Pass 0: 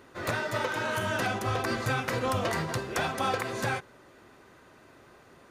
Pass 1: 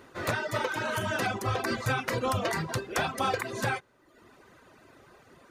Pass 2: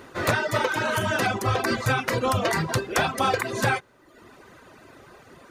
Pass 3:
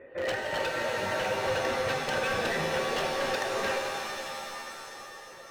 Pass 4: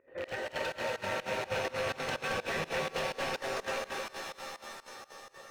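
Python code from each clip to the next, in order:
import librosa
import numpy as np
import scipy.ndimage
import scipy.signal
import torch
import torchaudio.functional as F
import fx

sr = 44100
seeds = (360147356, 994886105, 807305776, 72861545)

y1 = fx.dereverb_blind(x, sr, rt60_s=0.86)
y1 = F.gain(torch.from_numpy(y1), 1.5).numpy()
y2 = fx.rider(y1, sr, range_db=10, speed_s=0.5)
y2 = F.gain(torch.from_numpy(y2), 6.0).numpy()
y3 = fx.formant_cascade(y2, sr, vowel='e')
y3 = 10.0 ** (-33.0 / 20.0) * (np.abs((y3 / 10.0 ** (-33.0 / 20.0) + 3.0) % 4.0 - 2.0) - 1.0)
y3 = fx.rev_shimmer(y3, sr, seeds[0], rt60_s=3.1, semitones=7, shimmer_db=-2, drr_db=2.5)
y3 = F.gain(torch.from_numpy(y3), 6.0).numpy()
y4 = fx.rattle_buzz(y3, sr, strikes_db=-41.0, level_db=-25.0)
y4 = fx.volume_shaper(y4, sr, bpm=125, per_beat=2, depth_db=-20, release_ms=74.0, shape='slow start')
y4 = y4 + 10.0 ** (-5.0 / 20.0) * np.pad(y4, (int(225 * sr / 1000.0), 0))[:len(y4)]
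y4 = F.gain(torch.from_numpy(y4), -5.0).numpy()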